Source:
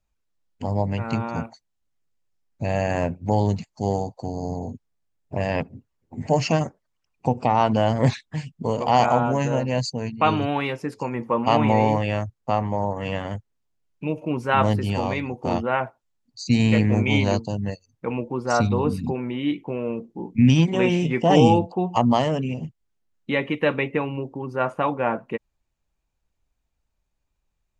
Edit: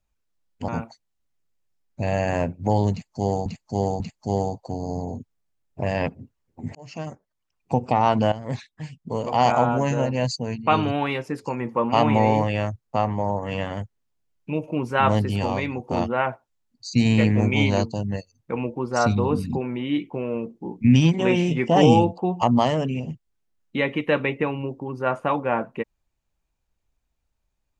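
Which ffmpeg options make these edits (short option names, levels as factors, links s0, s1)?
-filter_complex "[0:a]asplit=6[s0][s1][s2][s3][s4][s5];[s0]atrim=end=0.682[s6];[s1]atrim=start=1.298:end=4.082[s7];[s2]atrim=start=3.538:end=4.082[s8];[s3]atrim=start=3.538:end=6.29,asetpts=PTS-STARTPTS,afade=t=out:st=2.748:d=0.004:c=hsin[s9];[s4]atrim=start=6.29:end=7.86,asetpts=PTS-STARTPTS,afade=t=in:d=1.02,afade=t=out:st=1.566:d=0.004:c=hsin:silence=0.188365[s10];[s5]atrim=start=7.86,asetpts=PTS-STARTPTS,afade=t=in:d=1.29:silence=0.188365[s11];[s6][s7]acrossfade=d=0.004:c1=hsin:c2=hsin[s12];[s12][s8]acrossfade=d=0.004:c1=hsin:c2=hsin[s13];[s9][s10][s11]concat=n=3:v=0:a=1[s14];[s13][s14]acrossfade=d=0.004:c1=hsin:c2=hsin"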